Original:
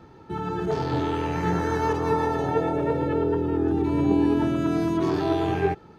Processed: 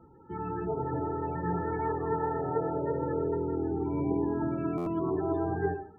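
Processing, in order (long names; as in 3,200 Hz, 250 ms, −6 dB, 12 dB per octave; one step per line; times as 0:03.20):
low-pass filter 3,600 Hz 12 dB per octave
on a send at −9 dB: convolution reverb RT60 0.45 s, pre-delay 62 ms
on the sum: spectral peaks only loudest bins 32
mains-hum notches 50/100/150/200 Hz
buffer that repeats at 0:04.77, samples 512, times 7
level −6.5 dB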